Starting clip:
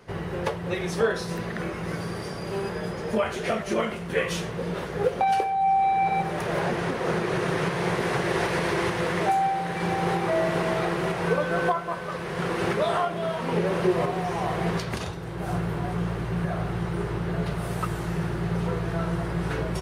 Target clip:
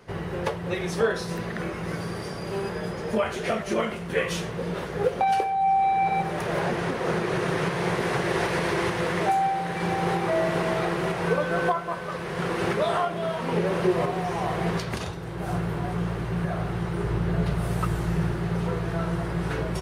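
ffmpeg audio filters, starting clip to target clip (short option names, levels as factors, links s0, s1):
-filter_complex "[0:a]asettb=1/sr,asplit=3[s0][s1][s2];[s0]atrim=end=17.044[s3];[s1]atrim=start=17.04:end=18.32,asetpts=PTS-STARTPTS,afade=t=in:d=0.004:c=qsin,afade=t=out:st=1.276:d=0.004:c=qsin,lowshelf=f=140:g=7[s4];[s2]atrim=start=18.316[s5];[s3][s4]acrossfade=d=0.004:c1=hsin:c2=qsin[s6];[s6][s5]acrossfade=d=0.004:c1=qsin:c2=hsin"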